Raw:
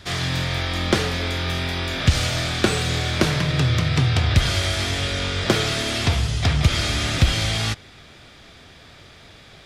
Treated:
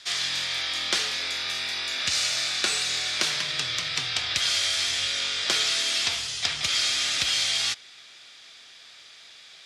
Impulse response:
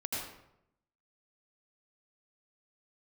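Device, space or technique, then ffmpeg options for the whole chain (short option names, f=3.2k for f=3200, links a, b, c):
piezo pickup straight into a mixer: -filter_complex "[0:a]lowpass=6.1k,aderivative,asettb=1/sr,asplit=3[a][b][c];[a]atrim=end=1.154[d];[b]atrim=start=1.15:end=3.18,asetpts=PTS-STARTPTS,afade=t=in:d=0.004:c=qsin,afade=t=out:st=2.026:d=0.004:c=qsin,bandreject=f=3.2k:w=13[e];[c]atrim=start=3.176[f];[d][e]acrossfade=d=0.004:c1=hsin:c2=qsin[g];[g][f]acrossfade=d=0.004:c1=qsin:c2=hsin,asettb=1/sr,asplit=3[h][i][j];[h]atrim=end=4.574[k];[i]atrim=start=4.57:end=5.12,asetpts=PTS-STARTPTS,afade=t=in:d=0.004:c=qsin,afade=t=out:st=0.546:d=0.004:c=qsin,asubboost=boost=11:cutoff=170[l];[j]atrim=start=5.116[m];[k][l]acrossfade=d=0.004:c1=hsin:c2=qsin[n];[n][m]acrossfade=d=0.004:c1=qsin:c2=hsin,volume=8dB"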